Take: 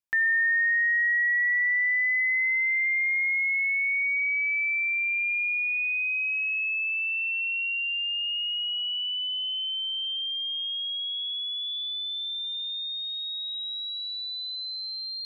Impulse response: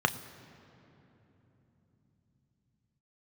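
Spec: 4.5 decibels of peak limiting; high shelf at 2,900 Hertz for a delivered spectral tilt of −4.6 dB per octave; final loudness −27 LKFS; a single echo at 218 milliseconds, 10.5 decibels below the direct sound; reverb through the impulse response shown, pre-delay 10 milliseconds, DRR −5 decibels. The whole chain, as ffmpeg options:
-filter_complex "[0:a]highshelf=frequency=2900:gain=8,alimiter=limit=-22dB:level=0:latency=1,aecho=1:1:218:0.299,asplit=2[link_01][link_02];[1:a]atrim=start_sample=2205,adelay=10[link_03];[link_02][link_03]afir=irnorm=-1:irlink=0,volume=-6.5dB[link_04];[link_01][link_04]amix=inputs=2:normalize=0,volume=-9dB"

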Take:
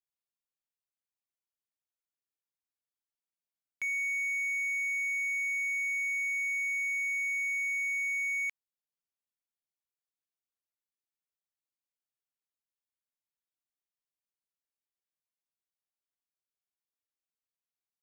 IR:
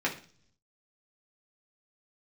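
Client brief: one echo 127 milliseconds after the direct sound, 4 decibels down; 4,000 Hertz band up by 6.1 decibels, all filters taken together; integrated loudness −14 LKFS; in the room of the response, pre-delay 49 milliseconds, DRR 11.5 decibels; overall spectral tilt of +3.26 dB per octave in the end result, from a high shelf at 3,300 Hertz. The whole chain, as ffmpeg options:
-filter_complex "[0:a]highshelf=frequency=3300:gain=3.5,equalizer=frequency=4000:width_type=o:gain=6,aecho=1:1:127:0.631,asplit=2[link_01][link_02];[1:a]atrim=start_sample=2205,adelay=49[link_03];[link_02][link_03]afir=irnorm=-1:irlink=0,volume=-21dB[link_04];[link_01][link_04]amix=inputs=2:normalize=0,volume=11dB"

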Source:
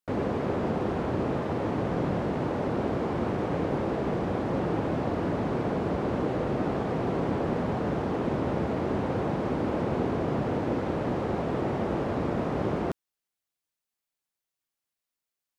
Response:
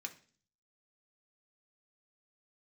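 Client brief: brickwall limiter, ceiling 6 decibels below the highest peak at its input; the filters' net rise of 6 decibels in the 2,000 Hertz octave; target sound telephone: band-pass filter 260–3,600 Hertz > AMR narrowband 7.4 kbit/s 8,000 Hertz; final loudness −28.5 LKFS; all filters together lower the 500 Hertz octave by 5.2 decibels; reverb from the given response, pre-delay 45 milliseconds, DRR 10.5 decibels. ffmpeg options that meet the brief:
-filter_complex "[0:a]equalizer=frequency=500:width_type=o:gain=-6.5,equalizer=frequency=2000:width_type=o:gain=8.5,alimiter=limit=-22.5dB:level=0:latency=1,asplit=2[link_01][link_02];[1:a]atrim=start_sample=2205,adelay=45[link_03];[link_02][link_03]afir=irnorm=-1:irlink=0,volume=-8.5dB[link_04];[link_01][link_04]amix=inputs=2:normalize=0,highpass=260,lowpass=3600,volume=7.5dB" -ar 8000 -c:a libopencore_amrnb -b:a 7400

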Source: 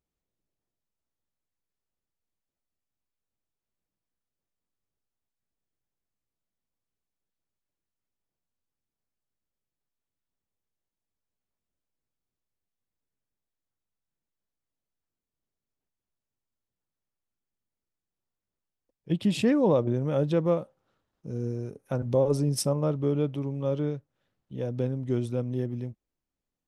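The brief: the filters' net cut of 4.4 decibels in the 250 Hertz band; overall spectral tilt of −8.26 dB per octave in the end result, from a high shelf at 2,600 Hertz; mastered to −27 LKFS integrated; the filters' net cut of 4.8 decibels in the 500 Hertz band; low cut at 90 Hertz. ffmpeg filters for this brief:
ffmpeg -i in.wav -af "highpass=90,equalizer=frequency=250:width_type=o:gain=-4.5,equalizer=frequency=500:width_type=o:gain=-4,highshelf=frequency=2600:gain=-8,volume=5dB" out.wav

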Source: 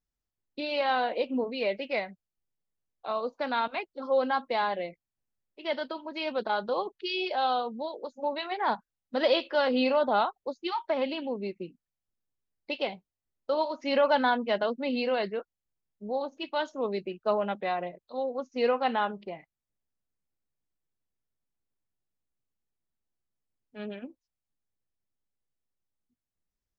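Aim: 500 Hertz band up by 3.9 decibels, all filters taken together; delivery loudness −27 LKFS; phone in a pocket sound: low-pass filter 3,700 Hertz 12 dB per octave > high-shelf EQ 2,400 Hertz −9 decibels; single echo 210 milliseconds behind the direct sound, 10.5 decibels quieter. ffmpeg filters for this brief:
ffmpeg -i in.wav -af "lowpass=3700,equalizer=frequency=500:width_type=o:gain=5,highshelf=frequency=2400:gain=-9,aecho=1:1:210:0.299,volume=0.5dB" out.wav

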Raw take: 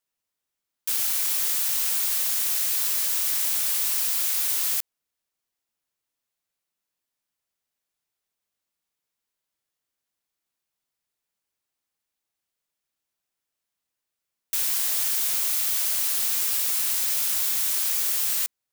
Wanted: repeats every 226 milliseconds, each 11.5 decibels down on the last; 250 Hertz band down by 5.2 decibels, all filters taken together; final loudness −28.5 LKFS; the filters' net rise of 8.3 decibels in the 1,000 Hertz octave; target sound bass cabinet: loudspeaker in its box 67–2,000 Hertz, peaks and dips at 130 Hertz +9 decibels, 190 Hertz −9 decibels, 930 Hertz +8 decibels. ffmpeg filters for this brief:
ffmpeg -i in.wav -af "highpass=frequency=67:width=0.5412,highpass=frequency=67:width=1.3066,equalizer=frequency=130:width_type=q:width=4:gain=9,equalizer=frequency=190:width_type=q:width=4:gain=-9,equalizer=frequency=930:width_type=q:width=4:gain=8,lowpass=frequency=2000:width=0.5412,lowpass=frequency=2000:width=1.3066,equalizer=frequency=250:width_type=o:gain=-6.5,equalizer=frequency=1000:width_type=o:gain=5.5,aecho=1:1:226|452|678:0.266|0.0718|0.0194,volume=11dB" out.wav

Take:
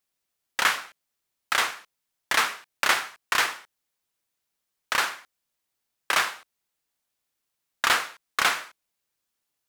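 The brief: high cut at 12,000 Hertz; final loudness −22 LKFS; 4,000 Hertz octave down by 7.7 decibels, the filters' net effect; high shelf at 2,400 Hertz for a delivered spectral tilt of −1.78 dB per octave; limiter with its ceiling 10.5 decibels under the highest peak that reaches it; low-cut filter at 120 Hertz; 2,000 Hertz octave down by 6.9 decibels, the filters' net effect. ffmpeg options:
ffmpeg -i in.wav -af "highpass=120,lowpass=12000,equalizer=frequency=2000:width_type=o:gain=-6.5,highshelf=frequency=2400:gain=-3.5,equalizer=frequency=4000:width_type=o:gain=-4.5,volume=13dB,alimiter=limit=-7.5dB:level=0:latency=1" out.wav

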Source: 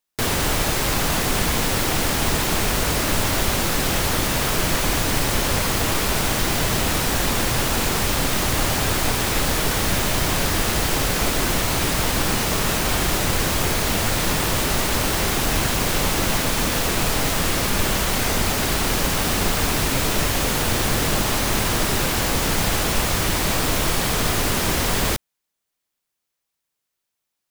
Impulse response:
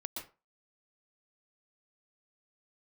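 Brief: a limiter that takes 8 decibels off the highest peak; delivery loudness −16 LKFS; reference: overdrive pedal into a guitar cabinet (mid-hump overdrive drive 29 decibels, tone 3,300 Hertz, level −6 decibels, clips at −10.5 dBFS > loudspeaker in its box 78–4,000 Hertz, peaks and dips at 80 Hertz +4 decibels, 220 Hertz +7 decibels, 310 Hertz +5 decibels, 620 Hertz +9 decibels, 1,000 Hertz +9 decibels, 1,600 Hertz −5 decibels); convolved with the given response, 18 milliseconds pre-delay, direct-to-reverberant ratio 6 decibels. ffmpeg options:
-filter_complex "[0:a]alimiter=limit=-14.5dB:level=0:latency=1,asplit=2[link_01][link_02];[1:a]atrim=start_sample=2205,adelay=18[link_03];[link_02][link_03]afir=irnorm=-1:irlink=0,volume=-5dB[link_04];[link_01][link_04]amix=inputs=2:normalize=0,asplit=2[link_05][link_06];[link_06]highpass=frequency=720:poles=1,volume=29dB,asoftclip=type=tanh:threshold=-10.5dB[link_07];[link_05][link_07]amix=inputs=2:normalize=0,lowpass=frequency=3300:poles=1,volume=-6dB,highpass=78,equalizer=frequency=80:width_type=q:width=4:gain=4,equalizer=frequency=220:width_type=q:width=4:gain=7,equalizer=frequency=310:width_type=q:width=4:gain=5,equalizer=frequency=620:width_type=q:width=4:gain=9,equalizer=frequency=1000:width_type=q:width=4:gain=9,equalizer=frequency=1600:width_type=q:width=4:gain=-5,lowpass=frequency=4000:width=0.5412,lowpass=frequency=4000:width=1.3066,volume=0.5dB"

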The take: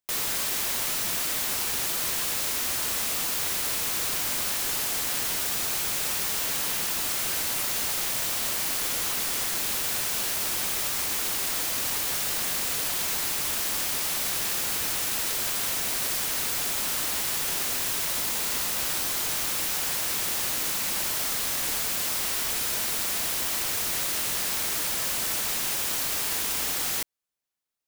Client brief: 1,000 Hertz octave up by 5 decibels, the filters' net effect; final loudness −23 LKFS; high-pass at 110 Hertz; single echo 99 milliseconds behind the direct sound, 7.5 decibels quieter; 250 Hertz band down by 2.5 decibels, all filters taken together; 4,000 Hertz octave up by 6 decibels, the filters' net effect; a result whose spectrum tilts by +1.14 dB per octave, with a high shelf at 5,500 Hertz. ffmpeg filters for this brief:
ffmpeg -i in.wav -af "highpass=110,equalizer=frequency=250:width_type=o:gain=-3.5,equalizer=frequency=1000:width_type=o:gain=6,equalizer=frequency=4000:width_type=o:gain=5.5,highshelf=frequency=5500:gain=4,aecho=1:1:99:0.422,volume=-3dB" out.wav

